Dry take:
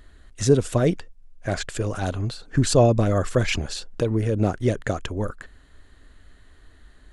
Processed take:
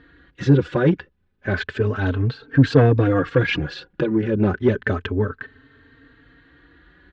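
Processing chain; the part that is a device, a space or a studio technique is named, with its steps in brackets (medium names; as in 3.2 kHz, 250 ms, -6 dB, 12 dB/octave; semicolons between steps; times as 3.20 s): barber-pole flanger into a guitar amplifier (endless flanger 3.8 ms +0.31 Hz; saturation -15.5 dBFS, distortion -15 dB; cabinet simulation 86–3700 Hz, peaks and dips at 87 Hz +4 dB, 140 Hz +5 dB, 280 Hz +7 dB, 440 Hz +6 dB, 650 Hz -7 dB, 1.6 kHz +8 dB); trim +5.5 dB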